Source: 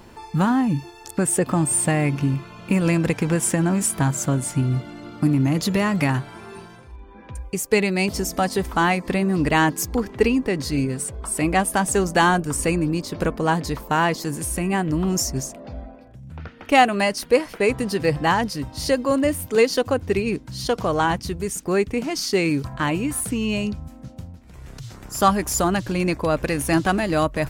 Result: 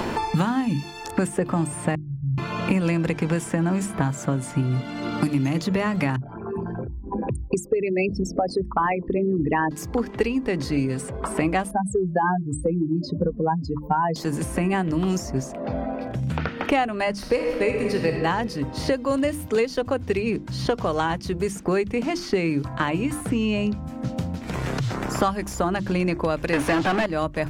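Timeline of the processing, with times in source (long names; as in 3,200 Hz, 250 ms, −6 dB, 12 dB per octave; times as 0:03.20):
0:01.95–0:02.38: inverse Chebyshev low-pass filter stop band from 680 Hz, stop band 80 dB
0:06.16–0:09.71: spectral envelope exaggerated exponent 3
0:11.71–0:14.16: expanding power law on the bin magnitudes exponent 3.1
0:17.13–0:18.09: thrown reverb, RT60 1.3 s, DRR 2 dB
0:26.53–0:27.06: mid-hump overdrive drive 31 dB, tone 2,800 Hz, clips at −6.5 dBFS
whole clip: low-pass filter 3,400 Hz 6 dB per octave; mains-hum notches 50/100/150/200/250/300/350 Hz; multiband upward and downward compressor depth 100%; level −2.5 dB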